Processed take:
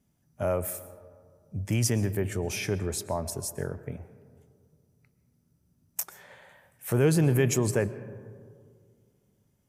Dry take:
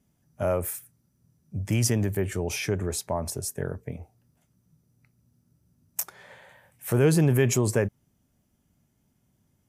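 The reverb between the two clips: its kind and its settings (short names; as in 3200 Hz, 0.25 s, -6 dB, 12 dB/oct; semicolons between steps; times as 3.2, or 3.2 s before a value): digital reverb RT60 2.1 s, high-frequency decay 0.3×, pre-delay 85 ms, DRR 15 dB; gain -2 dB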